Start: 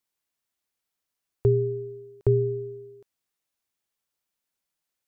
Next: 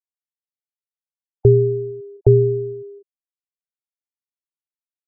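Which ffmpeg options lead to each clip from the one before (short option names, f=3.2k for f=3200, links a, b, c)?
-af "afftfilt=real='re*gte(hypot(re,im),0.0316)':imag='im*gte(hypot(re,im),0.0316)':win_size=1024:overlap=0.75,volume=9dB"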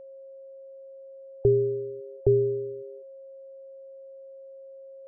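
-af "equalizer=f=110:w=1.3:g=-8,aeval=exprs='val(0)+0.0158*sin(2*PI*540*n/s)':c=same,volume=-6.5dB"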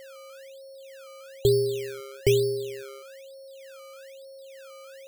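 -af "acrusher=samples=17:mix=1:aa=0.000001:lfo=1:lforange=17:lforate=1.1"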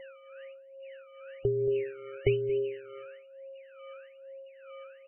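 -af "aecho=1:1:228:0.168,tremolo=f=2.3:d=0.63" -ar 12000 -c:a libmp3lame -b:a 8k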